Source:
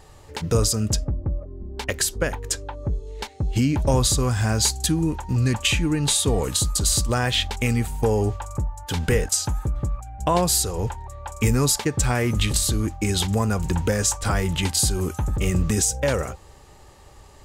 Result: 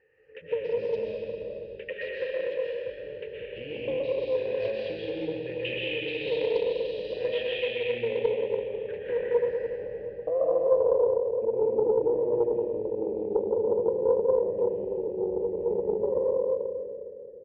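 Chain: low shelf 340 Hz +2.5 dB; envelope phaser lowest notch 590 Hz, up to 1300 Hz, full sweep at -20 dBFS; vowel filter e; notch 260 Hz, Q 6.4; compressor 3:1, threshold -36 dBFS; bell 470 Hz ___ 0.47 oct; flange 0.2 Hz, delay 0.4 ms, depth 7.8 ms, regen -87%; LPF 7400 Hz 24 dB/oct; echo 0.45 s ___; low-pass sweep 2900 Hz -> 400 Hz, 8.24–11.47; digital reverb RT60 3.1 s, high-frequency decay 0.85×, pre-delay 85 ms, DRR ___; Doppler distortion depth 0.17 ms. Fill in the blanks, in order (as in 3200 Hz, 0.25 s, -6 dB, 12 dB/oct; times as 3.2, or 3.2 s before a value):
+13.5 dB, -23 dB, -7 dB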